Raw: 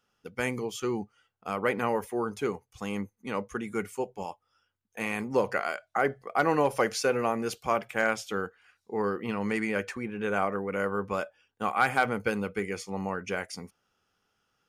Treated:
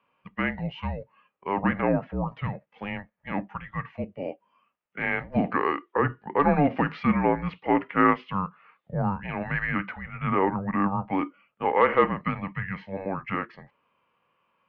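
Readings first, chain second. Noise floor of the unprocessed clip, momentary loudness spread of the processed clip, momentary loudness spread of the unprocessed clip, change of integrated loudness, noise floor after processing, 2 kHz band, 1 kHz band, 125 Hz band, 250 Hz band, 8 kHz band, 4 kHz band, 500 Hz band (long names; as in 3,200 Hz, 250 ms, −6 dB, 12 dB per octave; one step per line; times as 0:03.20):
−79 dBFS, 14 LU, 10 LU, +3.0 dB, −76 dBFS, +1.0 dB, +4.0 dB, +8.5 dB, +6.0 dB, below −35 dB, −4.5 dB, +0.5 dB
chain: harmonic and percussive parts rebalanced percussive −7 dB
single-sideband voice off tune −290 Hz 490–3,200 Hz
level +9 dB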